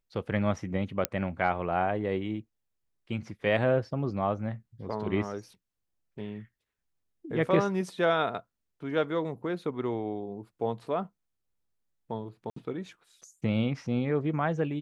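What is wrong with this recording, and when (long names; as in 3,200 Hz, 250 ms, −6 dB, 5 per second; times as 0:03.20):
0:01.05: click −8 dBFS
0:12.50–0:12.56: drop-out 64 ms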